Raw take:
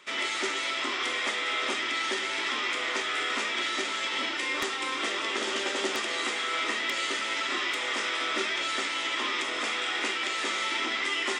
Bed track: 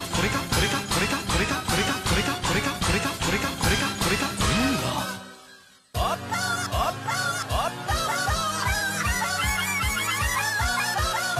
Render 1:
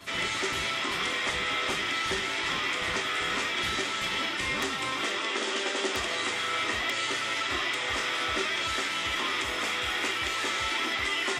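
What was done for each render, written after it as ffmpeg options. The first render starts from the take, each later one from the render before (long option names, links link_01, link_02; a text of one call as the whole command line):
ffmpeg -i in.wav -i bed.wav -filter_complex "[1:a]volume=-17.5dB[link_01];[0:a][link_01]amix=inputs=2:normalize=0" out.wav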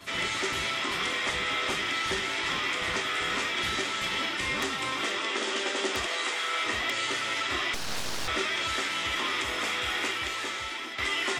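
ffmpeg -i in.wav -filter_complex "[0:a]asettb=1/sr,asplit=3[link_01][link_02][link_03];[link_01]atrim=end=6.064[link_04];[link_02]atrim=start=6.06:end=6.66,asetpts=PTS-STARTPTS,afade=type=in:duration=0.004:curve=qsin,afade=type=out:start_time=0.596:duration=0.004:curve=qsin,highpass=380[link_05];[link_03]atrim=start=6.656[link_06];[link_04][link_05]acrossfade=duration=0.004:curve1=hsin:curve2=qsin[link_07];[link_07][link_06]acrossfade=duration=0.004:curve1=qsin:curve2=hsin,asettb=1/sr,asplit=3[link_08][link_09][link_10];[link_08]atrim=end=7.744[link_11];[link_09]atrim=start=7.74:end=8.28,asetpts=PTS-STARTPTS,afade=type=in:duration=0.004:curve=qsin,afade=type=out:start_time=0.536:duration=0.004:curve=qsin,aeval=exprs='abs(val(0))':channel_layout=same[link_12];[link_10]atrim=start=8.276[link_13];[link_11][link_12]acrossfade=duration=0.004:curve1=hsin:curve2=qsin[link_14];[link_14][link_13]acrossfade=duration=0.004:curve1=qsin:curve2=hsin,asplit=2[link_15][link_16];[link_15]atrim=end=10.98,asetpts=PTS-STARTPTS,afade=type=out:start_time=9.97:duration=1.01:silence=0.334965[link_17];[link_16]atrim=start=10.98,asetpts=PTS-STARTPTS,afade=type=in:duration=0.004:curve=hsin:silence=0.334965[link_18];[link_17][link_18]concat=n=2:v=0:a=1" out.wav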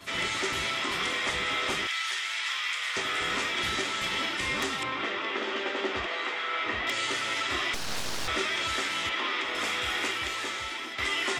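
ffmpeg -i in.wav -filter_complex "[0:a]asettb=1/sr,asplit=3[link_01][link_02][link_03];[link_01]atrim=end=1.874[link_04];[link_02]atrim=start=1.87:end=2.97,asetpts=PTS-STARTPTS,afade=type=in:duration=0.004:curve=qsin,afade=type=out:start_time=1.096:duration=0.004:curve=qsin,highpass=1400[link_05];[link_03]atrim=start=2.966[link_06];[link_04][link_05]acrossfade=duration=0.004:curve1=hsin:curve2=qsin[link_07];[link_07][link_06]acrossfade=duration=0.004:curve1=qsin:curve2=hsin,asettb=1/sr,asplit=3[link_08][link_09][link_10];[link_08]atrim=end=4.834[link_11];[link_09]atrim=start=4.83:end=6.87,asetpts=PTS-STARTPTS,afade=type=in:duration=0.004:curve=qsin,afade=type=out:start_time=2.036:duration=0.004:curve=qsin,lowpass=3000[link_12];[link_10]atrim=start=6.866[link_13];[link_11][link_12]acrossfade=duration=0.004:curve1=hsin:curve2=qsin[link_14];[link_14][link_13]acrossfade=duration=0.004:curve1=qsin:curve2=hsin,asettb=1/sr,asplit=3[link_15][link_16][link_17];[link_15]atrim=end=9.094[link_18];[link_16]atrim=start=9.09:end=9.55,asetpts=PTS-STARTPTS,afade=type=in:duration=0.004:curve=qsin,afade=type=out:start_time=0.456:duration=0.004:curve=qsin,acrossover=split=200 5000:gain=0.112 1 0.158[link_19][link_20][link_21];[link_19][link_20][link_21]amix=inputs=3:normalize=0[link_22];[link_17]atrim=start=9.546[link_23];[link_18][link_22]acrossfade=duration=0.004:curve1=hsin:curve2=qsin[link_24];[link_24][link_23]acrossfade=duration=0.004:curve1=qsin:curve2=hsin" out.wav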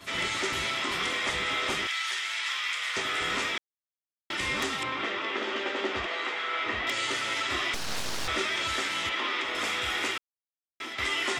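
ffmpeg -i in.wav -filter_complex "[0:a]asplit=5[link_01][link_02][link_03][link_04][link_05];[link_01]atrim=end=3.58,asetpts=PTS-STARTPTS,afade=type=out:start_time=3.576:duration=0.004:curve=hsin[link_06];[link_02]atrim=start=3.58:end=4.3,asetpts=PTS-STARTPTS,volume=0[link_07];[link_03]atrim=start=4.3:end=10.18,asetpts=PTS-STARTPTS,afade=type=in:duration=0.004:curve=hsin,afade=type=out:start_time=5.876:duration=0.004:curve=hsin[link_08];[link_04]atrim=start=10.18:end=10.8,asetpts=PTS-STARTPTS,volume=0[link_09];[link_05]atrim=start=10.8,asetpts=PTS-STARTPTS,afade=type=in:duration=0.004:curve=hsin[link_10];[link_06][link_07][link_08][link_09][link_10]concat=n=5:v=0:a=1" out.wav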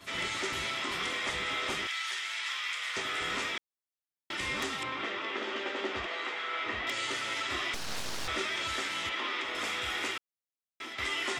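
ffmpeg -i in.wav -af "volume=-4dB" out.wav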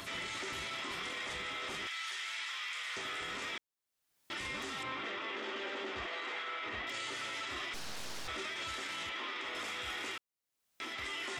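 ffmpeg -i in.wav -af "acompressor=mode=upward:threshold=-41dB:ratio=2.5,alimiter=level_in=8dB:limit=-24dB:level=0:latency=1:release=17,volume=-8dB" out.wav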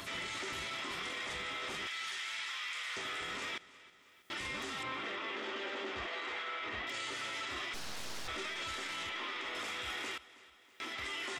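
ffmpeg -i in.wav -af "aecho=1:1:321|642|963|1284|1605:0.106|0.0593|0.0332|0.0186|0.0104" out.wav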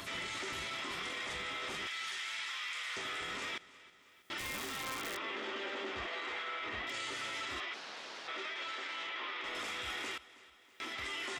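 ffmpeg -i in.wav -filter_complex "[0:a]asettb=1/sr,asplit=3[link_01][link_02][link_03];[link_01]atrim=end=4.384[link_04];[link_02]atrim=start=4.38:end=5.17,asetpts=PTS-STARTPTS,afade=type=in:duration=0.004:curve=qsin,afade=type=out:start_time=0.786:duration=0.004:curve=qsin,aeval=exprs='(mod(42.2*val(0)+1,2)-1)/42.2':channel_layout=same[link_05];[link_03]atrim=start=5.166[link_06];[link_04][link_05]acrossfade=duration=0.004:curve1=hsin:curve2=qsin[link_07];[link_07][link_06]acrossfade=duration=0.004:curve1=qsin:curve2=hsin,asettb=1/sr,asplit=3[link_08][link_09][link_10];[link_08]atrim=end=7.604[link_11];[link_09]atrim=start=7.6:end=9.44,asetpts=PTS-STARTPTS,afade=type=in:duration=0.004:curve=qsin,afade=type=out:start_time=1.836:duration=0.004:curve=qsin,highpass=360,lowpass=4200[link_12];[link_10]atrim=start=9.436[link_13];[link_11][link_12]acrossfade=duration=0.004:curve1=hsin:curve2=qsin[link_14];[link_14][link_13]acrossfade=duration=0.004:curve1=qsin:curve2=hsin" out.wav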